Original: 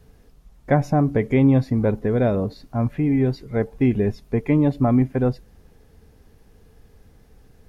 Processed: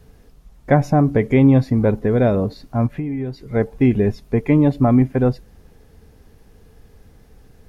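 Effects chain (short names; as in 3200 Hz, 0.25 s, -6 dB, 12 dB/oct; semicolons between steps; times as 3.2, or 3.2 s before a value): 2.86–3.55 compressor 6:1, threshold -26 dBFS, peak gain reduction 10.5 dB; gain +3.5 dB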